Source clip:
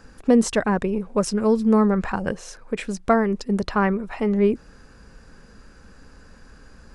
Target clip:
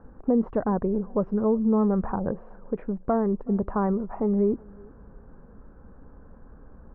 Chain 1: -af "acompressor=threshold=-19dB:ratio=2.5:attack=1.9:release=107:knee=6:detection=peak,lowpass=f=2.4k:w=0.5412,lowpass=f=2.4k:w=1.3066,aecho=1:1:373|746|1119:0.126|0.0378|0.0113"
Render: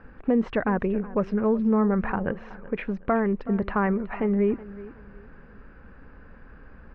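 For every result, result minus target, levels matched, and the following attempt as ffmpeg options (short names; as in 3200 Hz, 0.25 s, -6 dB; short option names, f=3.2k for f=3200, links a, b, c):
2000 Hz band +13.0 dB; echo-to-direct +8.5 dB
-af "acompressor=threshold=-19dB:ratio=2.5:attack=1.9:release=107:knee=6:detection=peak,lowpass=f=1.1k:w=0.5412,lowpass=f=1.1k:w=1.3066,aecho=1:1:373|746|1119:0.126|0.0378|0.0113"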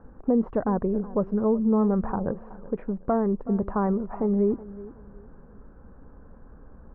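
echo-to-direct +8.5 dB
-af "acompressor=threshold=-19dB:ratio=2.5:attack=1.9:release=107:knee=6:detection=peak,lowpass=f=1.1k:w=0.5412,lowpass=f=1.1k:w=1.3066,aecho=1:1:373|746:0.0473|0.0142"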